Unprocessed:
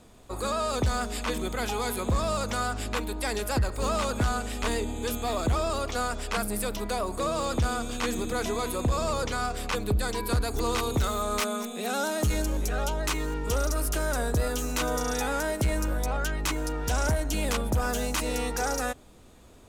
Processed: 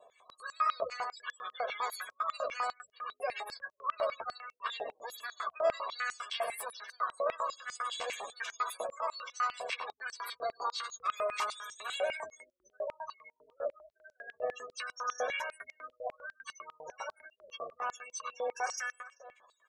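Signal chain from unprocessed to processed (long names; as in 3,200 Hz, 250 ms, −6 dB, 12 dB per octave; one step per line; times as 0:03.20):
lower of the sound and its delayed copy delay 1.8 ms
soft clipping −23 dBFS, distortion −16 dB
spring reverb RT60 1.6 s, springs 40 ms, chirp 35 ms, DRR 16 dB
0:07.46–0:08.89: compressor whose output falls as the input rises −32 dBFS, ratio −0.5
0:13.08–0:14.30: high-shelf EQ 4,400 Hz → 2,400 Hz −8.5 dB
on a send: multi-tap delay 97/420 ms −5/−18.5 dB
on the sum: gate on every frequency bin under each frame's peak −20 dB strong
double-tracking delay 12 ms −8 dB
high-pass on a step sequencer 10 Hz 660–5,900 Hz
level −6 dB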